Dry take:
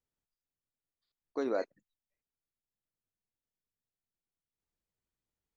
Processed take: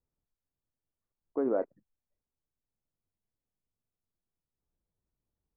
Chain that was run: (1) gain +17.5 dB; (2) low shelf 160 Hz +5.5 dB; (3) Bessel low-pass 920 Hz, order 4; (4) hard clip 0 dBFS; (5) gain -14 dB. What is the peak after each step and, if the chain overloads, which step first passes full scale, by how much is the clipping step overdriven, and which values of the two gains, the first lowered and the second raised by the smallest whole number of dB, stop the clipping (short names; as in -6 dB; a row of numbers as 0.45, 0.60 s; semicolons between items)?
-3.0, -2.5, -4.0, -4.0, -18.0 dBFS; no overload